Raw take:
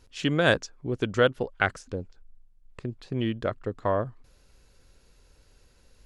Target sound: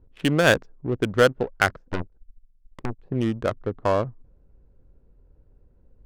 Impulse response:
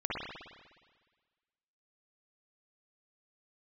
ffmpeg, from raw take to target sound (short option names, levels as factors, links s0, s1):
-filter_complex "[0:a]adynamicsmooth=sensitivity=3.5:basefreq=510,asplit=3[s0][s1][s2];[s0]afade=t=out:st=1.84:d=0.02[s3];[s1]aeval=exprs='0.0944*(cos(1*acos(clip(val(0)/0.0944,-1,1)))-cos(1*PI/2))+0.0119*(cos(3*acos(clip(val(0)/0.0944,-1,1)))-cos(3*PI/2))+0.0266*(cos(8*acos(clip(val(0)/0.0944,-1,1)))-cos(8*PI/2))':c=same,afade=t=in:st=1.84:d=0.02,afade=t=out:st=3.01:d=0.02[s4];[s2]afade=t=in:st=3.01:d=0.02[s5];[s3][s4][s5]amix=inputs=3:normalize=0,volume=1.58"